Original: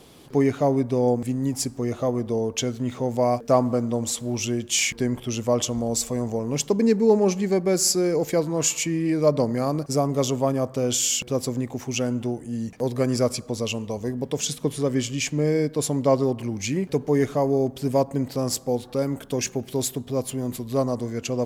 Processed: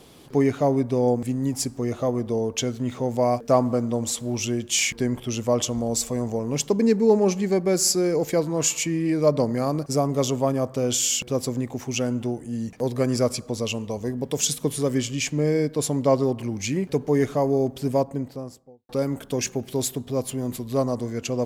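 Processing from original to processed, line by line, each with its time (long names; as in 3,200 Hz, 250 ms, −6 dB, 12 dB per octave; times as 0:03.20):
0:14.30–0:14.98: high-shelf EQ 6,700 Hz +9 dB
0:17.75–0:18.89: fade out and dull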